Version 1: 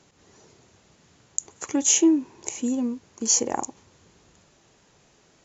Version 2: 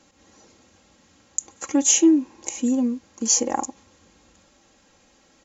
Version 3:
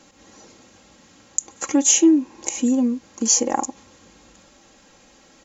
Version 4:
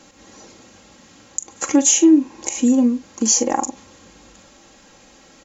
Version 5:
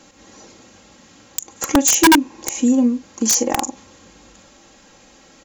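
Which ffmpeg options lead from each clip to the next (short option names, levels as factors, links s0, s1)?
-af "aecho=1:1:3.7:0.68"
-filter_complex "[0:a]equalizer=f=79:w=6:g=-12.5,asplit=2[s0][s1];[s1]acompressor=threshold=0.0355:ratio=6,volume=1[s2];[s0][s2]amix=inputs=2:normalize=0"
-filter_complex "[0:a]alimiter=limit=0.398:level=0:latency=1:release=178,asplit=2[s0][s1];[s1]adelay=41,volume=0.224[s2];[s0][s2]amix=inputs=2:normalize=0,volume=1.5"
-af "aeval=exprs='(mod(2*val(0)+1,2)-1)/2':c=same"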